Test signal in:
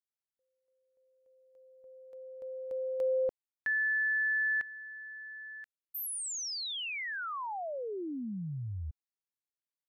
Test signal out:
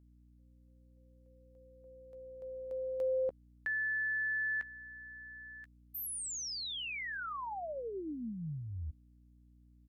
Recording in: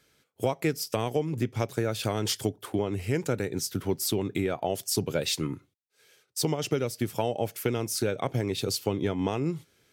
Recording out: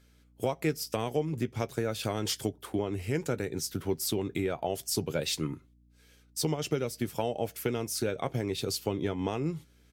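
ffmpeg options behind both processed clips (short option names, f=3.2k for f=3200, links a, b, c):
-filter_complex "[0:a]aeval=exprs='val(0)+0.00126*(sin(2*PI*60*n/s)+sin(2*PI*2*60*n/s)/2+sin(2*PI*3*60*n/s)/3+sin(2*PI*4*60*n/s)/4+sin(2*PI*5*60*n/s)/5)':c=same,asplit=2[a][b];[b]adelay=13,volume=-13.5dB[c];[a][c]amix=inputs=2:normalize=0,volume=-3dB" -ar 48000 -c:a libopus -b:a 128k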